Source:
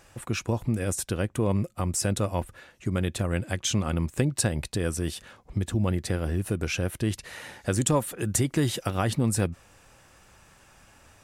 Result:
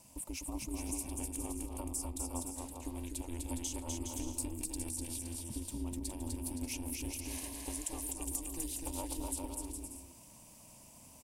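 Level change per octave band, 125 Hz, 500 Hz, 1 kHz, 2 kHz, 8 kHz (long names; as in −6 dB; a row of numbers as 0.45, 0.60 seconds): −18.5, −18.0, −13.0, −18.0, −6.0 decibels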